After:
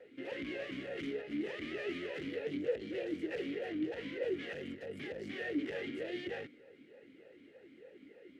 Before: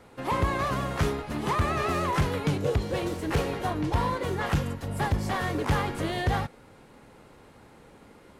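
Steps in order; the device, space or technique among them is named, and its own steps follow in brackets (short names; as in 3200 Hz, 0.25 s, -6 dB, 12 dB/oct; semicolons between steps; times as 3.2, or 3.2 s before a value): talk box (tube stage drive 34 dB, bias 0.6; vowel sweep e-i 3.3 Hz); gain +8.5 dB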